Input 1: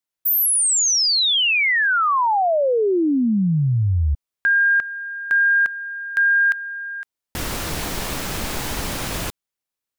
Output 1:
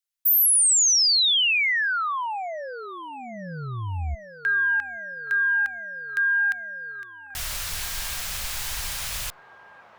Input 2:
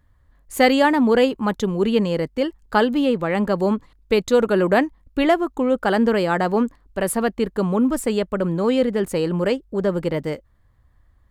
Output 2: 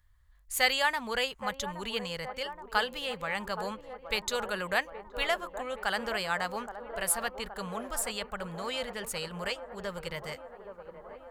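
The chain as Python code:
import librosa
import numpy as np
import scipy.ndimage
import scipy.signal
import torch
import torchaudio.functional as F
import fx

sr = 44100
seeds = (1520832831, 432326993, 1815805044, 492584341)

p1 = fx.tone_stack(x, sr, knobs='10-0-10')
y = p1 + fx.echo_wet_bandpass(p1, sr, ms=822, feedback_pct=71, hz=550.0, wet_db=-8.0, dry=0)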